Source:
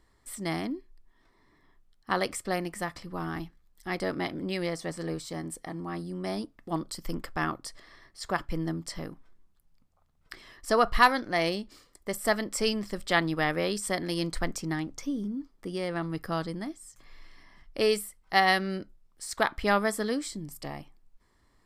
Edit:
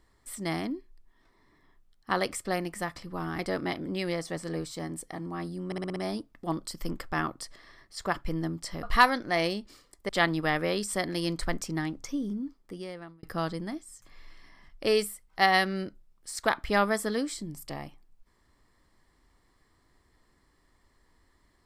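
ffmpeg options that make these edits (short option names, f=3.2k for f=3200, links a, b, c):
-filter_complex "[0:a]asplit=10[a][b][c][d][e][f][g][h][i][j];[a]atrim=end=3.392[k];[b]atrim=start=3.928:end=6.262[l];[c]atrim=start=6.198:end=6.262[m];[d]atrim=start=6.198:end=6.262[n];[e]atrim=start=6.198:end=6.262[o];[f]atrim=start=6.198:end=6.262[p];[g]atrim=start=6.198:end=9.072[q];[h]atrim=start=10.848:end=12.112[r];[i]atrim=start=13.028:end=16.17,asetpts=PTS-STARTPTS,afade=t=out:st=2.332:d=0.81[s];[j]atrim=start=16.17,asetpts=PTS-STARTPTS,afade=t=in:d=0.004:c=hsin[t];[k][l]acrossfade=d=0.004:c1=hsin:c2=hsin[u];[u][m]acrossfade=d=0.004:c1=hsin:c2=hsin[v];[v][n]acrossfade=d=0.004:c1=hsin:c2=hsin[w];[w][o]acrossfade=d=0.004:c1=hsin:c2=hsin[x];[x][p]acrossfade=d=0.004:c1=hsin:c2=hsin[y];[y][q]acrossfade=d=0.004:c1=hsin:c2=hsin[z];[z][r]acrossfade=d=0.004:c1=hsin:c2=hsin[aa];[s][t]concat=n=2:v=0:a=1[ab];[aa][ab]acrossfade=d=0.004:c1=hsin:c2=hsin"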